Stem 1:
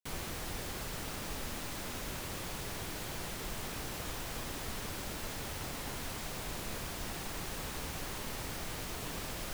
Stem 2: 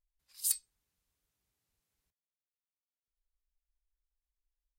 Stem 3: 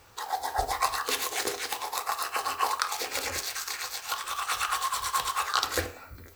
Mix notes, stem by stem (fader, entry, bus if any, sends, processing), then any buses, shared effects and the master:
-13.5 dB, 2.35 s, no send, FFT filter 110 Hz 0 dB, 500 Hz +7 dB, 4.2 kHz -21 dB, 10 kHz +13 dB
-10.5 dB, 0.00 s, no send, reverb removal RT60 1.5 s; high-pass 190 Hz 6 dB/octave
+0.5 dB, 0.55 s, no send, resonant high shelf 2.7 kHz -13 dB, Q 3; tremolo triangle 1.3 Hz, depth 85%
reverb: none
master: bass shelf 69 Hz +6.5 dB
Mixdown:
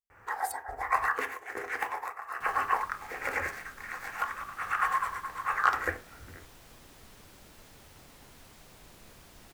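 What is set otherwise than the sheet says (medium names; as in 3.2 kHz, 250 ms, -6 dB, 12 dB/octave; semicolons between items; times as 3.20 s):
stem 1: missing FFT filter 110 Hz 0 dB, 500 Hz +7 dB, 4.2 kHz -21 dB, 10 kHz +13 dB; stem 3: entry 0.55 s -> 0.10 s; master: missing bass shelf 69 Hz +6.5 dB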